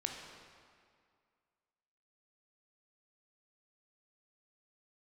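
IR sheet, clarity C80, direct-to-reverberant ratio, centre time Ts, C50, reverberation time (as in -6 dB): 4.5 dB, 1.5 dB, 68 ms, 3.0 dB, 2.1 s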